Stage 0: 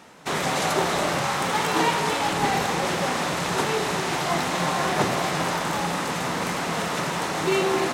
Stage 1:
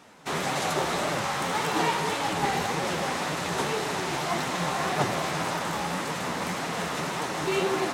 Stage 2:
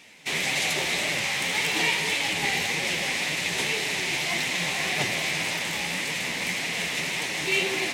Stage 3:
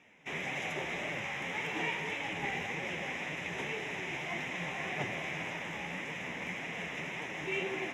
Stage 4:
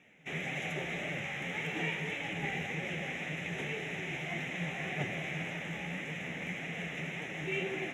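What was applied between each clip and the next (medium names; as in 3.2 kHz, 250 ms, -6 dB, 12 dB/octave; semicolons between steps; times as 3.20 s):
flange 1.8 Hz, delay 6.2 ms, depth 9.2 ms, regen +41%
resonant high shelf 1.7 kHz +8.5 dB, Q 3; trim -4 dB
boxcar filter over 10 samples; trim -6.5 dB
graphic EQ with 31 bands 160 Hz +8 dB, 1 kHz -12 dB, 5 kHz -9 dB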